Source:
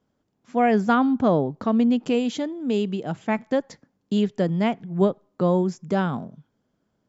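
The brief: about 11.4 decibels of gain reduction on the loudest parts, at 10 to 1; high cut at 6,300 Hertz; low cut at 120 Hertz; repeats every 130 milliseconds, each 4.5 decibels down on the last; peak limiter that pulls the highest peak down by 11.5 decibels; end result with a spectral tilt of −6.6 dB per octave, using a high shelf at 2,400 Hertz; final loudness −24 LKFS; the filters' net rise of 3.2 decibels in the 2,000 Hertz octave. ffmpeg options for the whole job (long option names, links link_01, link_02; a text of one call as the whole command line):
ffmpeg -i in.wav -af "highpass=120,lowpass=6300,equalizer=frequency=2000:width_type=o:gain=8.5,highshelf=frequency=2400:gain=-9,acompressor=threshold=-26dB:ratio=10,alimiter=level_in=2dB:limit=-24dB:level=0:latency=1,volume=-2dB,aecho=1:1:130|260|390|520|650|780|910|1040|1170:0.596|0.357|0.214|0.129|0.0772|0.0463|0.0278|0.0167|0.01,volume=9.5dB" out.wav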